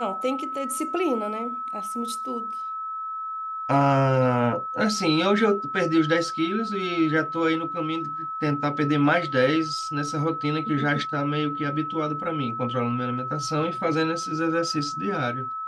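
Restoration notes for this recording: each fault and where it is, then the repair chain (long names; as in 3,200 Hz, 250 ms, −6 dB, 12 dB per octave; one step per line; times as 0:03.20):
whistle 1,300 Hz −29 dBFS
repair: notch filter 1,300 Hz, Q 30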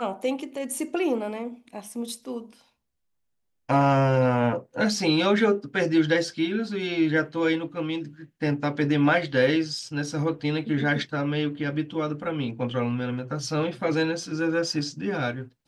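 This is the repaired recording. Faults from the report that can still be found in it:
none of them is left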